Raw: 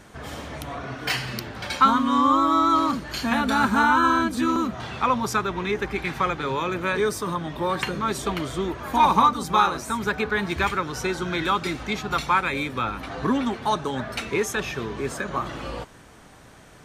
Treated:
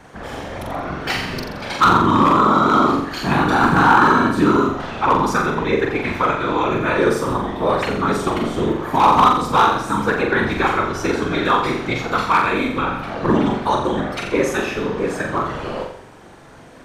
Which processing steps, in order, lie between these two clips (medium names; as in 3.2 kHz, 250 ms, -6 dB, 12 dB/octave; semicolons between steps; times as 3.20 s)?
high-pass 360 Hz 6 dB/octave; tilt EQ -2.5 dB/octave; whisper effect; hard clipper -13 dBFS, distortion -19 dB; flutter echo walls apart 7.4 m, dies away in 0.62 s; trim +5 dB